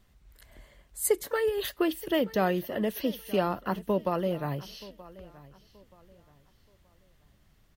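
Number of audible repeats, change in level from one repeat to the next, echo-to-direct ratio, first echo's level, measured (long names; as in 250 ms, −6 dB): 2, −10.0 dB, −19.0 dB, −19.5 dB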